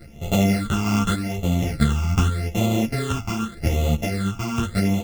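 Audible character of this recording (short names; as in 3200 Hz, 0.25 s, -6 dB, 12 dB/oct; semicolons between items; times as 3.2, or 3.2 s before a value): a buzz of ramps at a fixed pitch in blocks of 64 samples; phasing stages 8, 0.84 Hz, lowest notch 520–1600 Hz; random-step tremolo; a shimmering, thickened sound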